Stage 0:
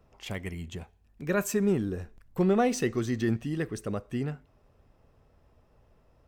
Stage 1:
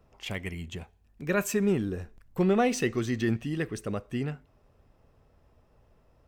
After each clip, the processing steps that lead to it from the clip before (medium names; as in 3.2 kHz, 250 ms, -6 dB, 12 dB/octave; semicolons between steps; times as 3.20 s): dynamic bell 2.6 kHz, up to +5 dB, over -52 dBFS, Q 1.4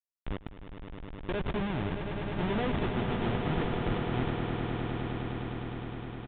Schmitt trigger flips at -26.5 dBFS; resampled via 8 kHz; echo with a slow build-up 103 ms, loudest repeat 8, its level -9 dB